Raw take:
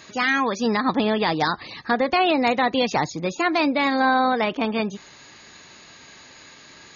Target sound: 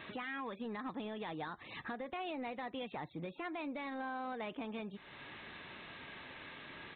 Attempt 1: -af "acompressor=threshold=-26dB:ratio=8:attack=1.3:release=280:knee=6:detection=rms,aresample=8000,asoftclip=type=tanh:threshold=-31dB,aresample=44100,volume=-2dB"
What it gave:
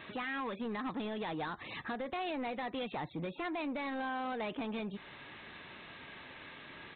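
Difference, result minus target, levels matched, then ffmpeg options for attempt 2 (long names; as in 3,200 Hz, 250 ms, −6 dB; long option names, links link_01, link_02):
downward compressor: peak gain reduction −6.5 dB
-af "acompressor=threshold=-33.5dB:ratio=8:attack=1.3:release=280:knee=6:detection=rms,aresample=8000,asoftclip=type=tanh:threshold=-31dB,aresample=44100,volume=-2dB"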